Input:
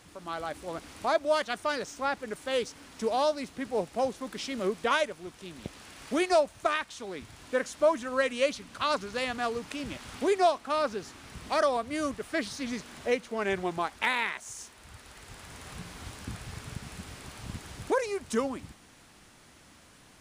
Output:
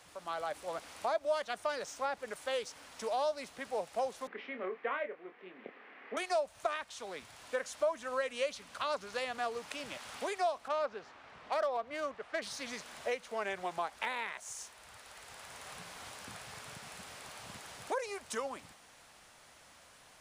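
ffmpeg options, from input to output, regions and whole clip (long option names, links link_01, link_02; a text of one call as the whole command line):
ffmpeg -i in.wav -filter_complex "[0:a]asettb=1/sr,asplit=3[link_01][link_02][link_03];[link_01]atrim=end=4.274[link_04];[link_02]atrim=start=4.27:end=6.17,asetpts=PTS-STARTPTS,afade=type=in:duration=0.004:curve=qsin,afade=type=out:start_time=1.896:duration=0.004:curve=qsin,highpass=frequency=230:width=0.5412,highpass=frequency=230:width=1.3066,equalizer=frequency=250:width_type=q:width=4:gain=5,equalizer=frequency=420:width_type=q:width=4:gain=6,equalizer=frequency=610:width_type=q:width=4:gain=-7,equalizer=frequency=930:width_type=q:width=4:gain=-6,equalizer=frequency=1400:width_type=q:width=4:gain=-4,equalizer=frequency=2000:width_type=q:width=4:gain=4,lowpass=frequency=2200:width=0.5412,lowpass=frequency=2200:width=1.3066,asplit=2[link_05][link_06];[link_06]adelay=27,volume=-7.5dB[link_07];[link_05][link_07]amix=inputs=2:normalize=0,atrim=end_sample=83790[link_08];[link_03]atrim=start=6.166[link_09];[link_04][link_08]acrossfade=duration=0.004:curve1=hsin:curve2=qsin[link_10];[link_10][link_09]acrossfade=duration=0.004:curve1=qsin:curve2=hsin,asettb=1/sr,asplit=3[link_11][link_12][link_13];[link_11]atrim=end=10.684[link_14];[link_12]atrim=start=10.68:end=12.42,asetpts=PTS-STARTPTS,afade=type=in:duration=0.004:curve=qsin,afade=type=out:start_time=1.736:duration=0.004:curve=qsin,lowshelf=frequency=160:gain=-10.5,adynamicsmooth=sensitivity=2.5:basefreq=2600[link_15];[link_13]atrim=start=12.416[link_16];[link_14][link_15]acrossfade=duration=0.004:curve1=hsin:curve2=qsin[link_17];[link_17][link_16]acrossfade=duration=0.004:curve1=qsin:curve2=hsin,acrossover=split=120|580[link_18][link_19][link_20];[link_18]acompressor=threshold=-60dB:ratio=4[link_21];[link_19]acompressor=threshold=-35dB:ratio=4[link_22];[link_20]acompressor=threshold=-34dB:ratio=4[link_23];[link_21][link_22][link_23]amix=inputs=3:normalize=0,lowshelf=frequency=430:width_type=q:width=1.5:gain=-8,volume=-2dB" out.wav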